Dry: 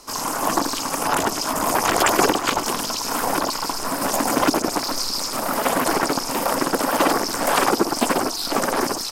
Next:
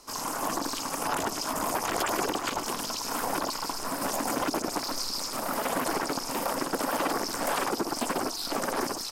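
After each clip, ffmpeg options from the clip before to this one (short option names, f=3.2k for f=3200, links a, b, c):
-af "alimiter=limit=-10dB:level=0:latency=1:release=62,volume=-7.5dB"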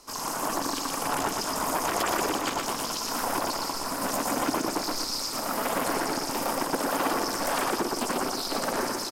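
-af "aecho=1:1:119|238|357|476|595:0.631|0.265|0.111|0.0467|0.0196"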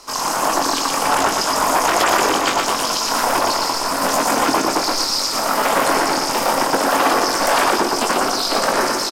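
-filter_complex "[0:a]asplit=2[a][b];[b]adelay=22,volume=-7dB[c];[a][c]amix=inputs=2:normalize=0,acrossover=split=420|7800[d][e][f];[e]acontrast=68[g];[d][g][f]amix=inputs=3:normalize=0,volume=5dB"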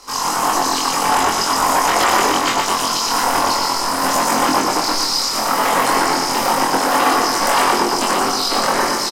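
-filter_complex "[0:a]bandreject=f=630:w=15,asplit=2[a][b];[b]adelay=23,volume=-2dB[c];[a][c]amix=inputs=2:normalize=0,volume=-1dB"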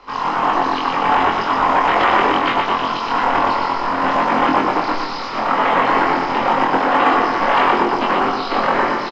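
-af "lowpass=f=3.1k:w=0.5412,lowpass=f=3.1k:w=1.3066,volume=1dB" -ar 16000 -c:a pcm_mulaw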